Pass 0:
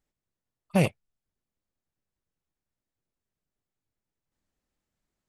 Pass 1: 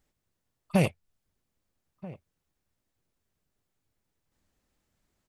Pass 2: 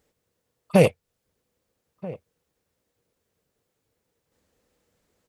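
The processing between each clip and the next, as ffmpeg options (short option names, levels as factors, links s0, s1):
-filter_complex "[0:a]equalizer=f=84:w=3.9:g=4,acompressor=threshold=0.0224:ratio=2,asplit=2[s0][s1];[s1]adelay=1283,volume=0.126,highshelf=f=4000:g=-28.9[s2];[s0][s2]amix=inputs=2:normalize=0,volume=2.24"
-af "highpass=f=82:p=1,equalizer=f=480:t=o:w=0.38:g=11.5,volume=1.88"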